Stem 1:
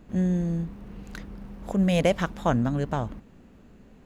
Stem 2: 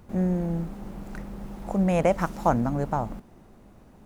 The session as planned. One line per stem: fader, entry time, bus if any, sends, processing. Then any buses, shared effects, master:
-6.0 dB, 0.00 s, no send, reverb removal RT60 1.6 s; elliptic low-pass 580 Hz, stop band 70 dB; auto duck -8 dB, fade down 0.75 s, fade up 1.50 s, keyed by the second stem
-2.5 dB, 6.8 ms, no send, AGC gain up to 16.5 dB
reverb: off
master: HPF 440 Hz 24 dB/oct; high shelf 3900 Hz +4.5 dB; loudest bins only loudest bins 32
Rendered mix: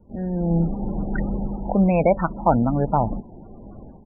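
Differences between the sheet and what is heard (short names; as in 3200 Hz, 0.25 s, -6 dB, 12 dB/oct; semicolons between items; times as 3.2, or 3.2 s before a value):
stem 2: polarity flipped; master: missing HPF 440 Hz 24 dB/oct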